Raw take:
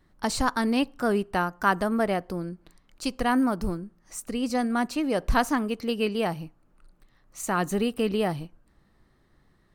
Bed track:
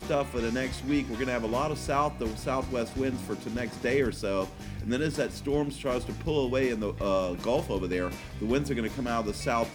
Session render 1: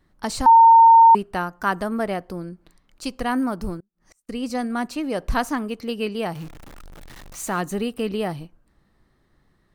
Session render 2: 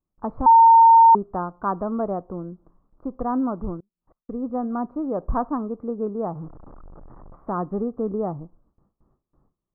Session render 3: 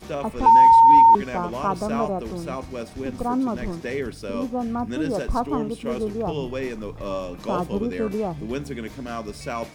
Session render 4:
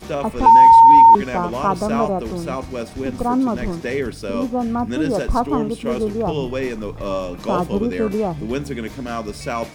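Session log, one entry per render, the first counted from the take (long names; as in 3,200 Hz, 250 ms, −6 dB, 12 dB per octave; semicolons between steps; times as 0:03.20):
0:00.46–0:01.15: beep over 913 Hz −7 dBFS; 0:03.80–0:04.29: gate with flip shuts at −37 dBFS, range −32 dB; 0:06.35–0:07.61: converter with a step at zero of −36 dBFS
elliptic low-pass filter 1,200 Hz, stop band 60 dB; noise gate with hold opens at −53 dBFS
mix in bed track −2 dB
level +5 dB; brickwall limiter −3 dBFS, peak gain reduction 2 dB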